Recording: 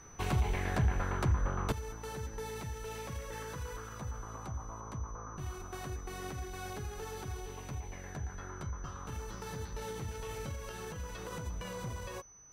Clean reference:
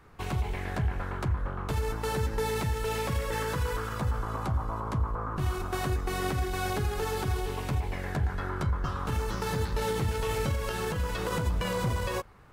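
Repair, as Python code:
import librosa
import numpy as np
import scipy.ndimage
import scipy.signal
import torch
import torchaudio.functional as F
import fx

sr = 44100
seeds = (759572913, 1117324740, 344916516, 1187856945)

y = fx.fix_declip(x, sr, threshold_db=-22.5)
y = fx.notch(y, sr, hz=6000.0, q=30.0)
y = fx.fix_level(y, sr, at_s=1.72, step_db=11.5)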